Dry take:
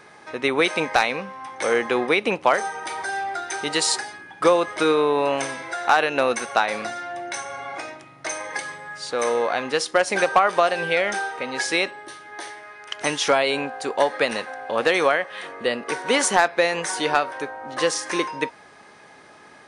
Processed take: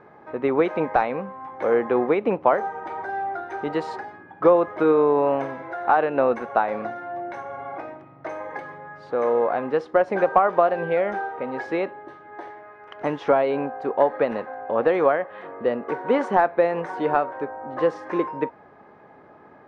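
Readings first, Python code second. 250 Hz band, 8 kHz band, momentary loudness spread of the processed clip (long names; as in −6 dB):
+2.0 dB, below −30 dB, 16 LU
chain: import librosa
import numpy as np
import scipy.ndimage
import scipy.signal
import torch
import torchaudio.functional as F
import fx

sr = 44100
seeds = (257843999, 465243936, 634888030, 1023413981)

y = scipy.signal.sosfilt(scipy.signal.butter(2, 1000.0, 'lowpass', fs=sr, output='sos'), x)
y = y * 10.0 ** (2.0 / 20.0)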